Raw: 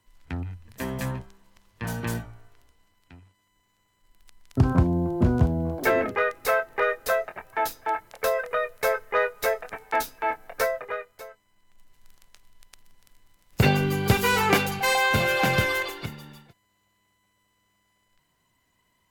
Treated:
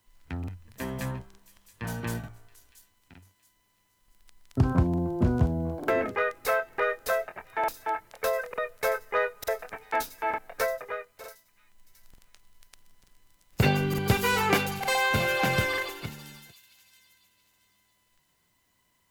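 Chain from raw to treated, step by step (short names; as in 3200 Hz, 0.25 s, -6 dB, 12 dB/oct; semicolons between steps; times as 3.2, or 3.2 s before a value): requantised 12-bit, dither triangular; on a send: thin delay 0.676 s, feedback 31%, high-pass 4600 Hz, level -11.5 dB; on the sum: crackling interface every 0.90 s, samples 2048, repeat, from 0.39; gain -3 dB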